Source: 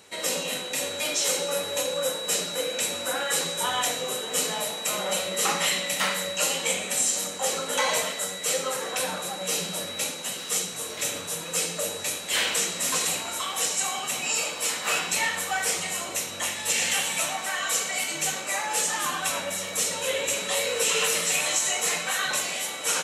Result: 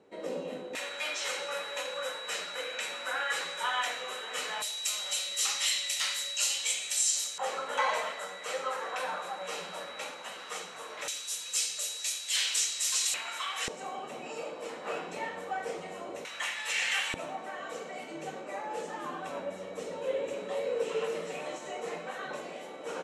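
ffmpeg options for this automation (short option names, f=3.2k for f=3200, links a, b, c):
-af "asetnsamples=n=441:p=0,asendcmd='0.75 bandpass f 1600;4.62 bandpass f 5000;7.38 bandpass f 1100;11.08 bandpass f 5200;13.14 bandpass f 1900;13.68 bandpass f 420;16.25 bandpass f 1800;17.14 bandpass f 380',bandpass=f=340:t=q:w=1.1:csg=0"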